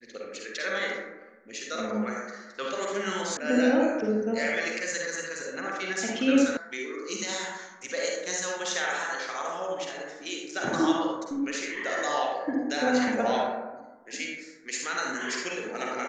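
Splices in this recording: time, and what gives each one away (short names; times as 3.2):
3.37 sound cut off
6.57 sound cut off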